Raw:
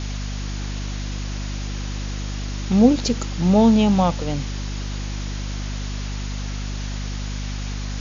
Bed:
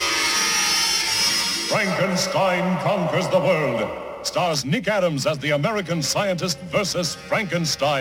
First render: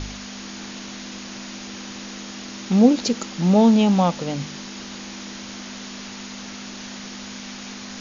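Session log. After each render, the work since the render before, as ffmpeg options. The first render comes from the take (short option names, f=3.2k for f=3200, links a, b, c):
-af "bandreject=f=50:t=h:w=4,bandreject=f=100:t=h:w=4,bandreject=f=150:t=h:w=4"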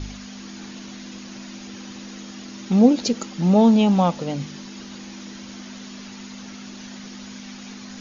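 -af "afftdn=nr=7:nf=-36"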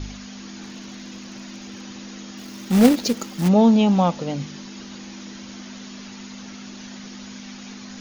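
-filter_complex "[0:a]asettb=1/sr,asplit=3[a][b][c];[a]atrim=end=0.624[d];[b]atrim=start=0.62:end=1.82,asetpts=PTS-STARTPTS,afade=t=in:d=0.004:c=qsin,afade=t=out:st=1.196:d=0.004:c=qsin,asoftclip=type=hard:threshold=-30dB[e];[c]atrim=start=1.816[f];[d][e]acrossfade=d=0.004:c1=hsin:c2=qsin[g];[g][f]acrossfade=d=0.004:c1=qsin:c2=hsin,asplit=3[h][i][j];[h]afade=t=out:st=2.37:d=0.02[k];[i]acrusher=bits=3:mode=log:mix=0:aa=0.000001,afade=t=in:st=2.37:d=0.02,afade=t=out:st=3.47:d=0.02[l];[j]afade=t=in:st=3.47:d=0.02[m];[k][l][m]amix=inputs=3:normalize=0"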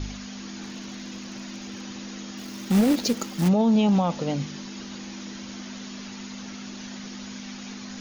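-af "alimiter=limit=-14dB:level=0:latency=1:release=13"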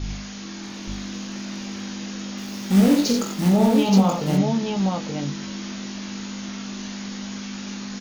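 -filter_complex "[0:a]asplit=2[a][b];[b]adelay=21,volume=-5.5dB[c];[a][c]amix=inputs=2:normalize=0,aecho=1:1:46|87|876:0.562|0.501|0.668"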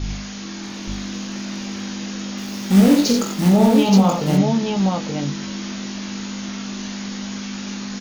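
-af "volume=3.5dB,alimiter=limit=-3dB:level=0:latency=1"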